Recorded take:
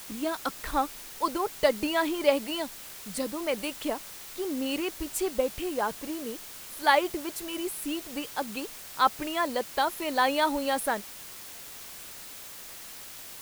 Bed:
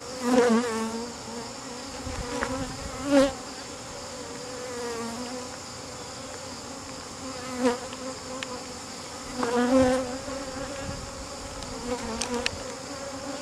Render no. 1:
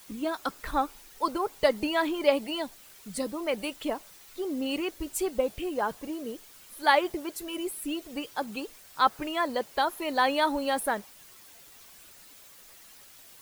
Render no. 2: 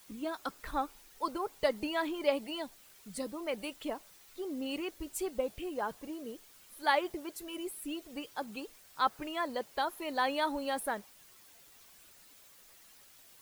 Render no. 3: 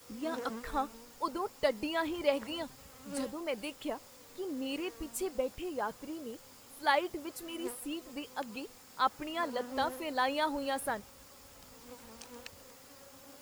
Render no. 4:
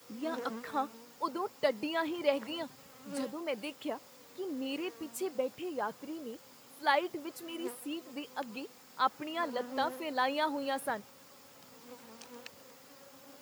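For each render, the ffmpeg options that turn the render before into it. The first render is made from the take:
-af "afftdn=nr=10:nf=-44"
-af "volume=-6.5dB"
-filter_complex "[1:a]volume=-20.5dB[a];[0:a][a]amix=inputs=2:normalize=0"
-af "highpass=f=120:w=0.5412,highpass=f=120:w=1.3066,equalizer=f=9.4k:w=0.98:g=-4.5"

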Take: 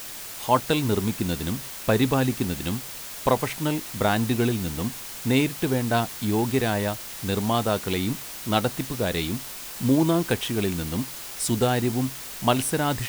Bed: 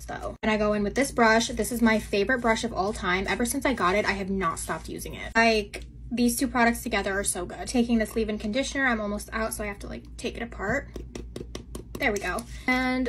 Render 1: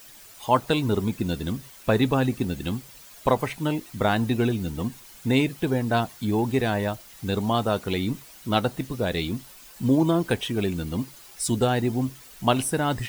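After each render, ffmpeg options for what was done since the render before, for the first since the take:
-af "afftdn=nr=12:nf=-37"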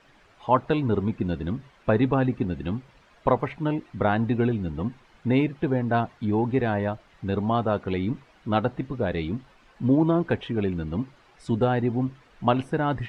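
-af "lowpass=2k"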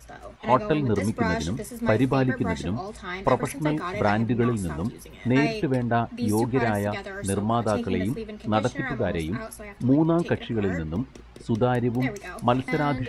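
-filter_complex "[1:a]volume=-8dB[a];[0:a][a]amix=inputs=2:normalize=0"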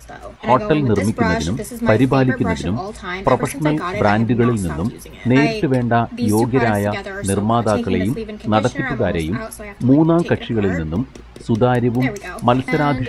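-af "volume=7.5dB,alimiter=limit=-2dB:level=0:latency=1"

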